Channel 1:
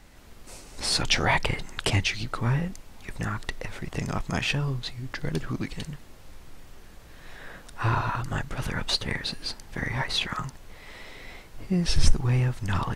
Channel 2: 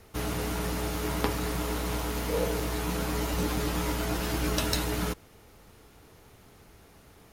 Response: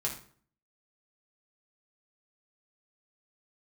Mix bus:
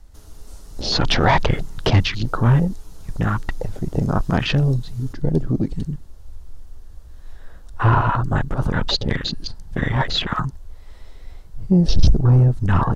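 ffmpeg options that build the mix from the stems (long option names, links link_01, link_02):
-filter_complex "[0:a]afwtdn=0.02,aeval=exprs='0.562*sin(PI/2*2.24*val(0)/0.562)':channel_layout=same,volume=0dB[link_01];[1:a]equalizer=frequency=6700:width_type=o:width=2.2:gain=10.5,acompressor=threshold=-31dB:ratio=6,volume=-16dB[link_02];[link_01][link_02]amix=inputs=2:normalize=0,acrossover=split=5000[link_03][link_04];[link_04]acompressor=threshold=-45dB:ratio=4:attack=1:release=60[link_05];[link_03][link_05]amix=inputs=2:normalize=0,equalizer=frequency=2300:width_type=o:width=0.87:gain=-9.5"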